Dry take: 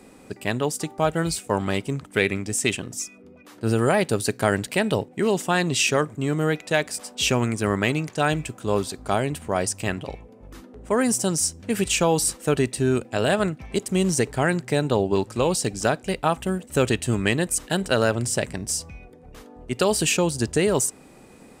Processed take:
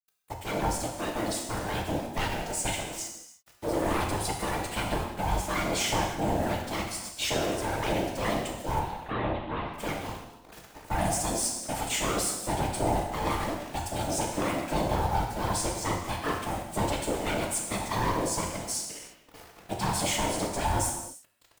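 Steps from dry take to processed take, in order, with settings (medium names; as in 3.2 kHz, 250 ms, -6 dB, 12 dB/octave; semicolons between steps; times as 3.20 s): overload inside the chain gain 19.5 dB; comb 7.3 ms, depth 86%; word length cut 6-bit, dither none; 8.79–9.74 s: elliptic low-pass 3.3 kHz, stop band 50 dB; ring modulator 440 Hz; whisper effect; gated-style reverb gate 360 ms falling, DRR 0.5 dB; trim -6.5 dB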